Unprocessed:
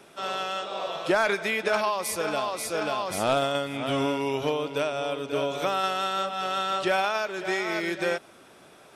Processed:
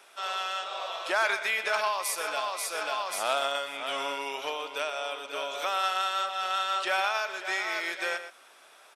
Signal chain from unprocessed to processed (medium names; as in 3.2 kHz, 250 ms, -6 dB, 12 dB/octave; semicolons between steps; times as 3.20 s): high-pass 830 Hz 12 dB/octave; echo from a far wall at 21 m, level -11 dB